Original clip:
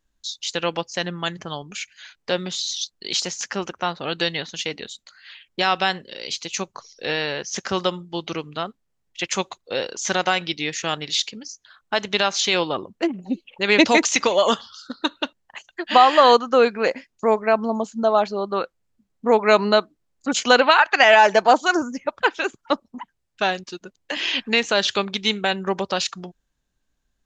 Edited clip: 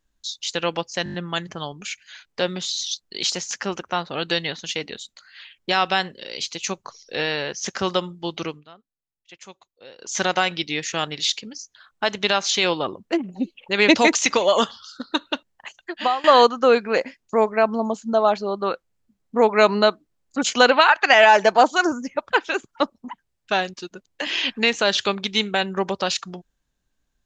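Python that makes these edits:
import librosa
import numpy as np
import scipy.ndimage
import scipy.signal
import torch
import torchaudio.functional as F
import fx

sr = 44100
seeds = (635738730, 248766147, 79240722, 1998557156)

y = fx.edit(x, sr, fx.stutter(start_s=1.04, slice_s=0.02, count=6),
    fx.fade_down_up(start_s=8.32, length_s=1.77, db=-19.0, fade_s=0.22, curve='qsin'),
    fx.fade_out_to(start_s=15.69, length_s=0.45, floor_db=-19.5), tone=tone)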